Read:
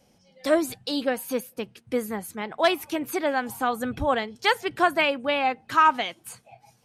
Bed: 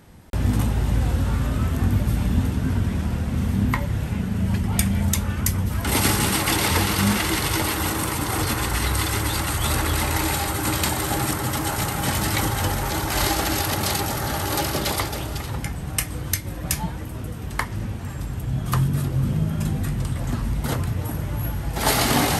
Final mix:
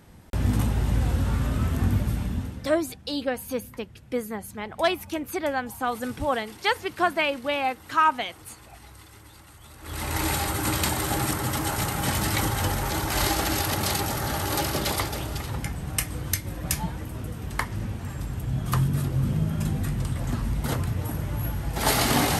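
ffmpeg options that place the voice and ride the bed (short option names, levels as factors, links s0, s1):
-filter_complex "[0:a]adelay=2200,volume=0.794[s0];[1:a]volume=10.6,afade=t=out:st=1.91:d=0.85:silence=0.0707946,afade=t=in:st=9.8:d=0.47:silence=0.0707946[s1];[s0][s1]amix=inputs=2:normalize=0"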